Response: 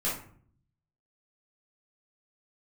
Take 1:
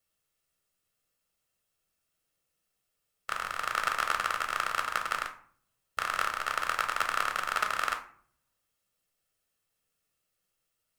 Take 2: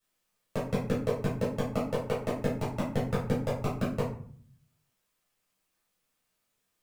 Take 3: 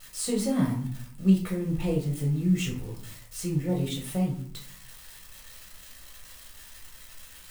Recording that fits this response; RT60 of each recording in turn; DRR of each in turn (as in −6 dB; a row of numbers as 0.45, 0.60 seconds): 2; 0.55, 0.55, 0.55 seconds; 5.0, −9.0, −1.5 decibels